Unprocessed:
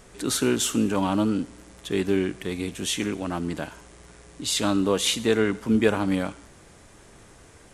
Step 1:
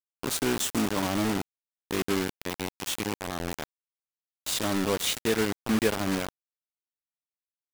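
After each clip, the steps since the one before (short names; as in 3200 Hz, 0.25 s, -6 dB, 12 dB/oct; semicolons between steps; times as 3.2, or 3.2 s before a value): bit-crush 4-bit; gain -5 dB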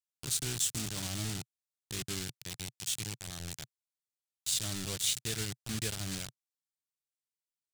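graphic EQ 125/250/500/1000/2000/4000/8000 Hz +10/-11/-8/-10/-3/+4/+8 dB; gain -7 dB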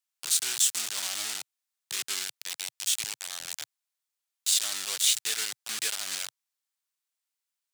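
HPF 900 Hz 12 dB/oct; gain +7.5 dB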